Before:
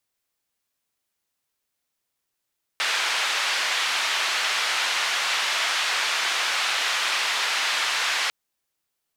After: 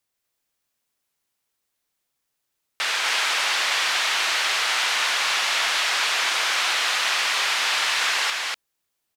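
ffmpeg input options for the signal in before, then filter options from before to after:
-f lavfi -i "anoisesrc=c=white:d=5.5:r=44100:seed=1,highpass=f=1000,lowpass=f=3500,volume=-10.6dB"
-af "aecho=1:1:243:0.708"

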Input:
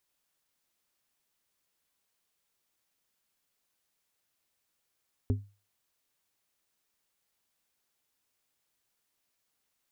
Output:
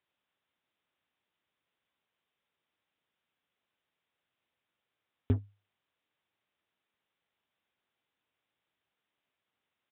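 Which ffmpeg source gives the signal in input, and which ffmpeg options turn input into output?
-f lavfi -i "aevalsrc='0.0841*pow(10,-3*t/0.32)*sin(2*PI*101*t)+0.0473*pow(10,-3*t/0.168)*sin(2*PI*252.5*t)+0.0266*pow(10,-3*t/0.121)*sin(2*PI*404*t)':d=0.89:s=44100"
-filter_complex "[0:a]highpass=78,asplit=2[a][b];[b]acrusher=bits=5:mix=0:aa=0.5,volume=-4dB[c];[a][c]amix=inputs=2:normalize=0,aresample=8000,aresample=44100"

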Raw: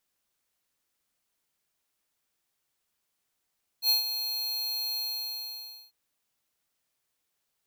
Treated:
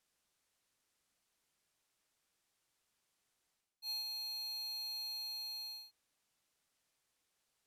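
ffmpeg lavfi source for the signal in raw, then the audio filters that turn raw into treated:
-f lavfi -i "aevalsrc='0.0794*(2*lt(mod(4240*t,1),0.5)-1)':d=2.097:s=44100,afade=t=in:d=0.076,afade=t=out:st=0.076:d=0.13:silence=0.316,afade=t=out:st=1.15:d=0.947"
-af "lowpass=11k,areverse,acompressor=threshold=-44dB:ratio=4,areverse"

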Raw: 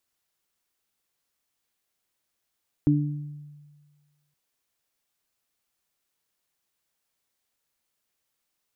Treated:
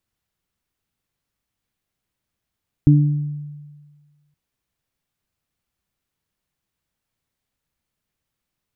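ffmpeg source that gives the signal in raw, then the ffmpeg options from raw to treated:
-f lavfi -i "aevalsrc='0.112*pow(10,-3*t/1.56)*sin(2*PI*147*t)+0.158*pow(10,-3*t/0.67)*sin(2*PI*294*t)':d=1.47:s=44100"
-af "bass=f=250:g=13,treble=f=4k:g=-5"

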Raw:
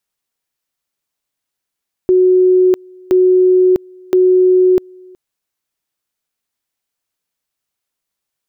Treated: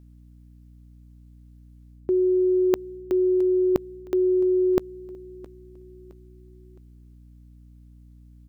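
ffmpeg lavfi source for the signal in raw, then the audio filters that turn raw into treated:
-f lavfi -i "aevalsrc='pow(10,(-6.5-29*gte(mod(t,1.02),0.65))/20)*sin(2*PI*368*t)':d=3.06:s=44100"
-af "areverse,acompressor=threshold=-19dB:ratio=10,areverse,aeval=exprs='val(0)+0.00398*(sin(2*PI*60*n/s)+sin(2*PI*2*60*n/s)/2+sin(2*PI*3*60*n/s)/3+sin(2*PI*4*60*n/s)/4+sin(2*PI*5*60*n/s)/5)':c=same,aecho=1:1:665|1330|1995:0.0891|0.0374|0.0157"

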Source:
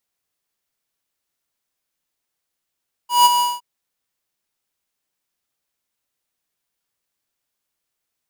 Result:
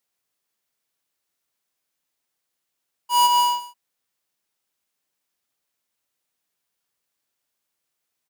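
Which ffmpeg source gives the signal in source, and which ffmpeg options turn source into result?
-f lavfi -i "aevalsrc='0.335*(2*lt(mod(971*t,1),0.5)-1)':d=0.515:s=44100,afade=t=in:d=0.164,afade=t=out:st=0.164:d=0.026:silence=0.422,afade=t=out:st=0.31:d=0.205"
-af "lowshelf=f=68:g=-10.5,acompressor=threshold=-16dB:ratio=6,aecho=1:1:136:0.211"

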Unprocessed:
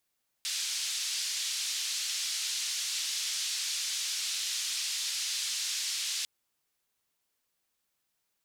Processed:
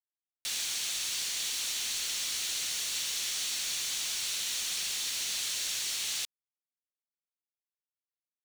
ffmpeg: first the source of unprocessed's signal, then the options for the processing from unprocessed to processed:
-f lavfi -i "anoisesrc=c=white:d=5.8:r=44100:seed=1,highpass=f=4000,lowpass=f=5200,volume=-17.8dB"
-af "highpass=670,bandreject=f=5k:w=11,acrusher=bits=5:mix=0:aa=0.5"

